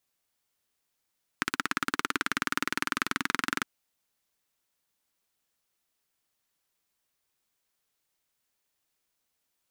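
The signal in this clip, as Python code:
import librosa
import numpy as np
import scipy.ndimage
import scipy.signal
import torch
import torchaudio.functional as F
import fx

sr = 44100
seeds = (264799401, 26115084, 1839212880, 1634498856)

y = fx.engine_single_rev(sr, seeds[0], length_s=2.21, rpm=2000, resonances_hz=(280.0, 1400.0), end_rpm=2700)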